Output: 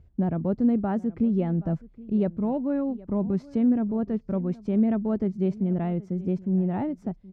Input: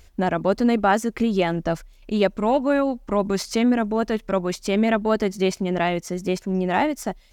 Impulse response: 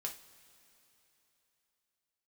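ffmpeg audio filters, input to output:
-filter_complex "[0:a]bandpass=frequency=120:width_type=q:width=1.3:csg=0,asplit=2[link_01][link_02];[link_02]aecho=0:1:773:0.0944[link_03];[link_01][link_03]amix=inputs=2:normalize=0,volume=5dB"

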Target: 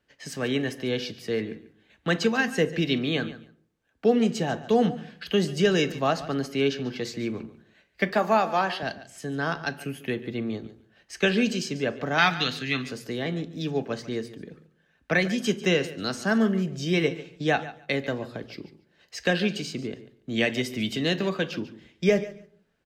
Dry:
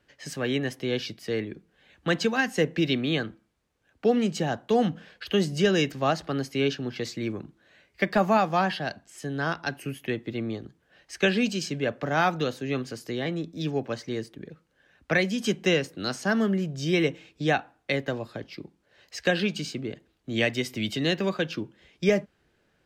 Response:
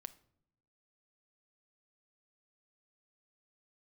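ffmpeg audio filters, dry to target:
-filter_complex "[0:a]asettb=1/sr,asplit=3[link_01][link_02][link_03];[link_01]atrim=end=12.184[link_04];[link_02]atrim=start=12.18:end=12.84,asetpts=PTS-STARTPTS,afade=type=in:duration=0.004:curve=qsin,afade=type=out:start_time=0.656:duration=0.004:curve=qsin,equalizer=frequency=500:width_type=o:width=1:gain=-10,equalizer=frequency=2000:width_type=o:width=1:gain=8,equalizer=frequency=4000:width_type=o:width=1:gain=10[link_05];[link_03]atrim=start=12.836[link_06];[link_04][link_05]acrossfade=duration=0.004:curve1=hsin:curve2=qsin[link_07];[link_07][link_06]acrossfade=duration=0.004:curve1=qsin:curve2=hsin,agate=range=-6dB:threshold=-57dB:ratio=16:detection=peak,asettb=1/sr,asplit=3[link_08][link_09][link_10];[link_08]atrim=end=8.094[link_11];[link_09]atrim=start=8.09:end=8.83,asetpts=PTS-STARTPTS,afade=type=in:duration=0.004:curve=qsin,afade=type=out:start_time=0.736:duration=0.004:curve=qsin,highpass=280[link_12];[link_10]atrim=start=8.826[link_13];[link_11][link_12]acrossfade=duration=0.004:curve1=hsin:curve2=qsin[link_14];[link_14][link_13]acrossfade=duration=0.004:curve1=qsin:curve2=hsin,aecho=1:1:143|286:0.158|0.0269[link_15];[1:a]atrim=start_sample=2205,asetrate=61740,aresample=44100[link_16];[link_15][link_16]afir=irnorm=-1:irlink=0,volume=8.5dB"

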